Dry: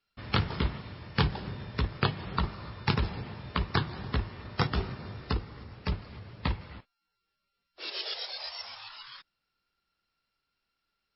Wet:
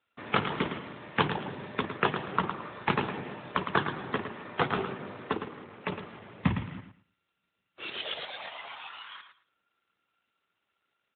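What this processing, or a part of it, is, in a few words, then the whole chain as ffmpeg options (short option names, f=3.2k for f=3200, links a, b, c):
telephone: -filter_complex "[0:a]asplit=3[a][b][c];[a]afade=t=out:st=6.43:d=0.02[d];[b]asubboost=boost=10:cutoff=150,afade=t=in:st=6.43:d=0.02,afade=t=out:st=8.03:d=0.02[e];[c]afade=t=in:st=8.03:d=0.02[f];[d][e][f]amix=inputs=3:normalize=0,highpass=260,lowpass=3.6k,aecho=1:1:110|220|330:0.355|0.071|0.0142,asoftclip=type=tanh:threshold=-12dB,volume=6dB" -ar 8000 -c:a libopencore_amrnb -b:a 12200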